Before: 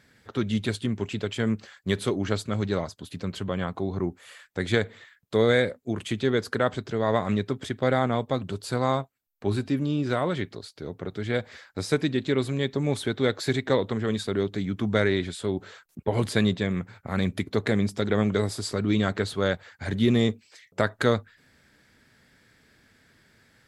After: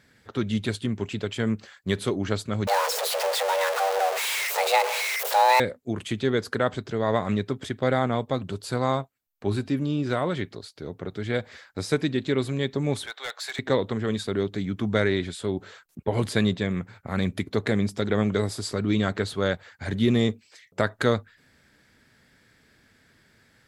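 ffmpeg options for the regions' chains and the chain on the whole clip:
-filter_complex "[0:a]asettb=1/sr,asplit=3[a][b][c];[a]atrim=end=2.674[d];[b]atrim=start=2.67:end=5.6,asetpts=PTS-STARTPTS,afade=t=in:d=0.004:c=qsin,afade=t=out:st=2.926:d=0.004:c=qsin,aeval=exprs='val(0)+0.5*0.0794*sgn(val(0))':c=same,afreqshift=390,highpass=430[e];[c]atrim=start=5.596[f];[d][e]acrossfade=d=0.004:c1=hsin:c2=qsin[g];[g][f]acrossfade=d=0.004:c1=qsin:c2=hsin,asettb=1/sr,asplit=3[h][i][j];[h]atrim=end=13.064[k];[i]atrim=start=13.06:end=13.59,asetpts=PTS-STARTPTS,afade=t=in:d=0.004:c=qsin,afade=t=out:st=0.526:d=0.004:c=qsin,highpass=f=750:w=0.5412,highpass=f=750:w=1.3066,asoftclip=type=hard:threshold=-27dB[l];[j]atrim=start=13.586[m];[k][l]acrossfade=d=0.004:c1=hsin:c2=qsin[n];[n][m]acrossfade=d=0.004:c1=qsin:c2=hsin"

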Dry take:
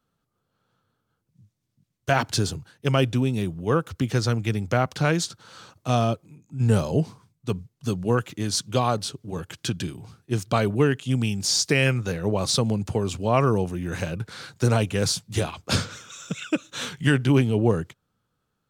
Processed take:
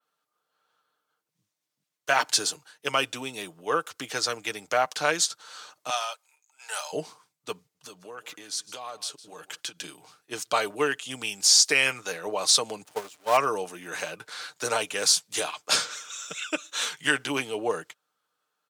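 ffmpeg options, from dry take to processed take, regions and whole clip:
-filter_complex "[0:a]asettb=1/sr,asplit=3[a][b][c];[a]atrim=end=5.904[d];[b]atrim=start=5.9:end=6.93,asetpts=PTS-STARTPTS,afade=t=in:d=0.004:c=qsin,afade=t=out:st=1.026:d=0.004:c=qsin,highpass=f=820:w=0.5412,highpass=f=820:w=1.3066,bandreject=f=1.1k:w=7.9[e];[c]atrim=start=6.926[f];[d][e]acrossfade=d=0.004:c1=hsin:c2=qsin[g];[g][f]acrossfade=d=0.004:c1=qsin:c2=hsin,asettb=1/sr,asplit=3[h][i][j];[h]atrim=end=7.594[k];[i]atrim=start=7.59:end=9.84,asetpts=PTS-STARTPTS,afade=t=in:d=0.004:c=qsin,afade=t=out:st=2.246:d=0.004:c=qsin,acompressor=threshold=-32dB:ratio=6:attack=3.2:release=140:knee=1:detection=peak,aecho=1:1:158:0.133,atrim=end_sample=99225[l];[j]atrim=start=9.836[m];[k][l]acrossfade=d=0.004:c1=hsin:c2=qsin[n];[n][m]acrossfade=d=0.004:c1=qsin:c2=hsin,asettb=1/sr,asplit=3[o][p][q];[o]atrim=end=12.854[r];[p]atrim=start=12.85:end=13.37,asetpts=PTS-STARTPTS,afade=t=in:d=0.004:c=qsin,afade=t=out:st=0.516:d=0.004:c=qsin,aeval=exprs='val(0)+0.5*0.0473*sgn(val(0))':c=same,agate=range=-23dB:threshold=-21dB:ratio=16:release=100:detection=peak[s];[q]atrim=start=13.366[t];[r][s]acrossfade=d=0.004:c1=hsin:c2=qsin[u];[u][t]acrossfade=d=0.004:c1=qsin:c2=hsin,adynamicequalizer=threshold=0.00794:dfrequency=7900:dqfactor=0.71:tfrequency=7900:tqfactor=0.71:attack=5:release=100:ratio=0.375:range=2.5:mode=boostabove:tftype=bell,highpass=640,aecho=1:1:6.6:0.38,volume=1dB"

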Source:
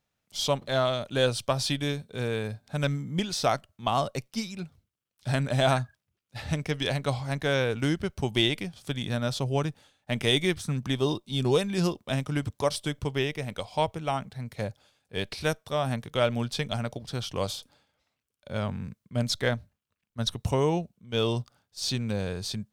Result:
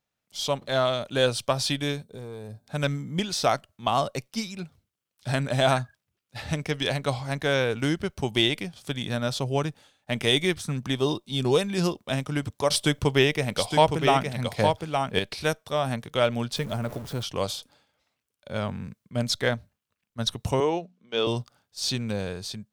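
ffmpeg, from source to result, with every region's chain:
-filter_complex "[0:a]asettb=1/sr,asplit=3[a][b][c];[a]atrim=end=2.034[d];[b]atrim=start=2.03:end=2.68,asetpts=PTS-STARTPTS,afade=t=in:d=0.004:c=qsin,afade=t=out:st=0.646:d=0.004:c=qsin,equalizer=f=2.3k:w=0.51:g=-12,acompressor=threshold=-36dB:ratio=3:attack=3.2:release=140:knee=1:detection=peak,aeval=exprs='clip(val(0),-1,0.0141)':c=same[e];[c]atrim=start=2.676[f];[d][e]acrossfade=d=0.004:c1=hsin:c2=qsin[g];[g][f]acrossfade=d=0.004:c1=qsin:c2=hsin,asettb=1/sr,asplit=3[h][i][j];[h]atrim=end=12.704[k];[i]atrim=start=12.7:end=15.19,asetpts=PTS-STARTPTS,afade=t=in:d=0.004:c=qsin,afade=t=out:st=2.486:d=0.004:c=qsin,acontrast=75,aecho=1:1:864:0.531,atrim=end_sample=109809[l];[j]atrim=start=15.186[m];[k][l]acrossfade=d=0.004:c1=hsin:c2=qsin[n];[n][m]acrossfade=d=0.004:c1=qsin:c2=hsin,asettb=1/sr,asplit=3[o][p][q];[o]atrim=end=16.564[r];[p]atrim=start=16.56:end=17.23,asetpts=PTS-STARTPTS,afade=t=in:d=0.004:c=qsin,afade=t=out:st=0.666:d=0.004:c=qsin,aeval=exprs='val(0)+0.5*0.0168*sgn(val(0))':c=same,equalizer=f=4.1k:t=o:w=2.6:g=-9,bandreject=f=760:w=11[s];[q]atrim=start=17.226[t];[r][s]acrossfade=d=0.004:c1=hsin:c2=qsin[u];[u][t]acrossfade=d=0.004:c1=qsin:c2=hsin,asettb=1/sr,asplit=3[v][w][x];[v]atrim=end=20.604[y];[w]atrim=start=20.6:end=21.27,asetpts=PTS-STARTPTS,afade=t=in:d=0.004:c=qsin,afade=t=out:st=0.666:d=0.004:c=qsin,acrossover=split=220 6000:gain=0.126 1 0.178[z][aa][ab];[z][aa][ab]amix=inputs=3:normalize=0,bandreject=f=60:t=h:w=6,bandreject=f=120:t=h:w=6,bandreject=f=180:t=h:w=6,bandreject=f=240:t=h:w=6[ac];[x]atrim=start=21.266[ad];[y][ac]acrossfade=d=0.004:c1=hsin:c2=qsin[ae];[ae][ad]acrossfade=d=0.004:c1=qsin:c2=hsin,lowshelf=f=140:g=-5.5,dynaudnorm=f=120:g=9:m=5dB,volume=-2.5dB"

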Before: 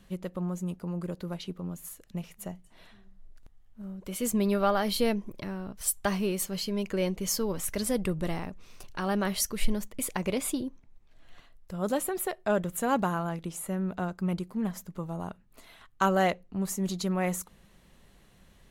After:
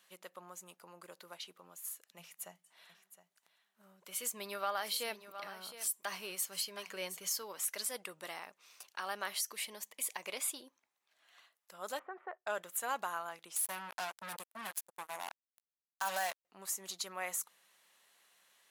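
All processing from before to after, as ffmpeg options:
-filter_complex "[0:a]asettb=1/sr,asplit=3[a][b][c];[a]atrim=end=2.184[d];[b]atrim=start=2.18:end=7.32,asetpts=PTS-STARTPTS,afade=t=in:d=0.004:c=qsin,afade=t=out:st=5.136:d=0.004:c=qsin,equalizer=f=170:t=o:w=0.23:g=11,aecho=1:1:714:0.211,atrim=end_sample=226674[e];[c]atrim=start=7.316[f];[d][e]acrossfade=d=0.004:c1=hsin:c2=qsin[g];[g][f]acrossfade=d=0.004:c1=qsin:c2=hsin,asettb=1/sr,asplit=3[h][i][j];[h]atrim=end=9.514[k];[i]atrim=start=9.51:end=10.26,asetpts=PTS-STARTPTS,afade=t=in:d=0.004:c=qsin,afade=t=out:st=0.746:d=0.004:c=qsin,bandreject=f=1.4k:w=5.3,agate=range=-33dB:threshold=-45dB:ratio=3:release=100:detection=peak,acompressor=mode=upward:threshold=-31dB:ratio=2.5:attack=3.2:release=140:knee=2.83:detection=peak[l];[j]atrim=start=10.256[m];[k][l]acrossfade=d=0.004:c1=hsin:c2=qsin[n];[n][m]acrossfade=d=0.004:c1=qsin:c2=hsin,asettb=1/sr,asplit=3[o][p][q];[o]atrim=end=11.994[r];[p]atrim=start=11.99:end=12.47,asetpts=PTS-STARTPTS,afade=t=in:d=0.004:c=qsin,afade=t=out:st=0.476:d=0.004:c=qsin,agate=range=-13dB:threshold=-47dB:ratio=16:release=100:detection=peak,lowpass=f=1.6k:w=0.5412,lowpass=f=1.6k:w=1.3066[s];[q]atrim=start=12.466[t];[r][s]acrossfade=d=0.004:c1=hsin:c2=qsin[u];[u][t]acrossfade=d=0.004:c1=qsin:c2=hsin,asettb=1/sr,asplit=3[v][w][x];[v]atrim=end=13.564[y];[w]atrim=start=13.56:end=16.45,asetpts=PTS-STARTPTS,afade=t=in:d=0.004:c=qsin,afade=t=out:st=2.886:d=0.004:c=qsin,equalizer=f=11k:t=o:w=0.53:g=9.5,aecho=1:1:1.2:0.7,atrim=end_sample=127449,acrusher=bits=4:mix=0:aa=0.5[z];[x]atrim=start=16.446[aa];[y][z]acrossfade=d=0.004:c1=hsin:c2=qsin[ab];[ab][aa]acrossfade=d=0.004:c1=qsin:c2=hsin,highpass=900,highshelf=f=5.9k:g=5,alimiter=limit=-20.5dB:level=0:latency=1:release=77,volume=-4dB"

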